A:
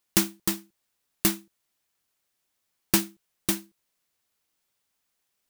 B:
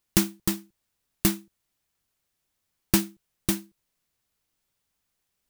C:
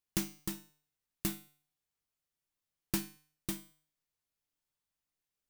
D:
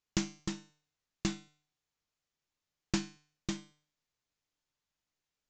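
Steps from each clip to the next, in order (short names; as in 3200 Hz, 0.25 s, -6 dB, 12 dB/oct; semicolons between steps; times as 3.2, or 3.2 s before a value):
low shelf 170 Hz +12 dB; gain -1.5 dB
resonator 150 Hz, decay 0.48 s, harmonics all, mix 70%; gain -3.5 dB
downsampling 16000 Hz; gain +3 dB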